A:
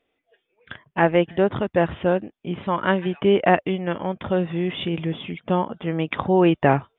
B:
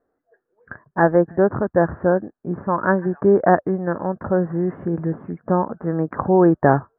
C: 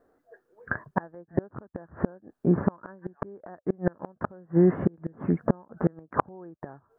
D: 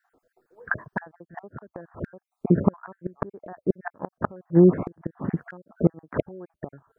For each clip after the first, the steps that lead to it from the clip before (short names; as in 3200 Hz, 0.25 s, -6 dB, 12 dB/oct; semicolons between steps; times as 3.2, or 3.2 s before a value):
Chebyshev low-pass 1700 Hz, order 6; gain +3 dB
in parallel at +1 dB: compressor 20:1, threshold -25 dBFS, peak gain reduction 17.5 dB; on the sum: flipped gate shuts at -10 dBFS, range -32 dB
random spectral dropouts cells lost 41%; gain +4.5 dB